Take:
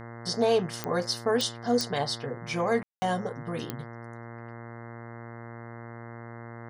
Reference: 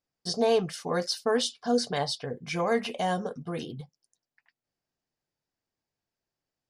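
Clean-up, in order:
click removal
hum removal 116.7 Hz, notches 18
ambience match 0:02.83–0:03.02

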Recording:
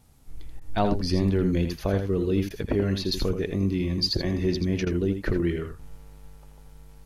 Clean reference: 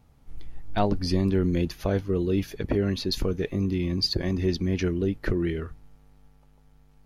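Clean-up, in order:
repair the gap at 0:00.60/0:02.49/0:04.85, 13 ms
downward expander −38 dBFS, range −21 dB
echo removal 82 ms −8 dB
level 0 dB, from 0:05.79 −8 dB

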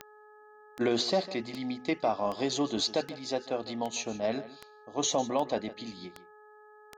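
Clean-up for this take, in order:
click removal
hum removal 423.6 Hz, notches 4
echo removal 151 ms −16 dB

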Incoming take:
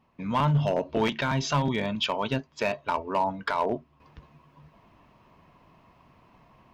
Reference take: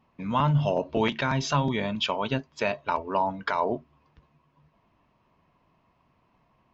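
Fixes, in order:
clipped peaks rebuilt −17.5 dBFS
level 0 dB, from 0:04.00 −9 dB

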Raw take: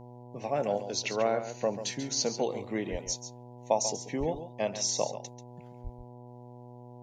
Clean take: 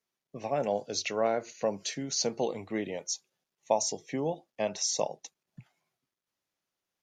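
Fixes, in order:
hum removal 122.4 Hz, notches 8
high-pass at the plosives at 0:02.91/0:04.19/0:05.83
echo removal 138 ms −11 dB

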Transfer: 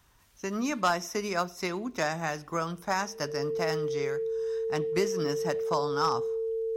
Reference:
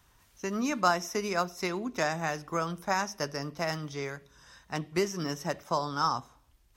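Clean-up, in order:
clipped peaks rebuilt −17 dBFS
click removal
notch filter 450 Hz, Q 30

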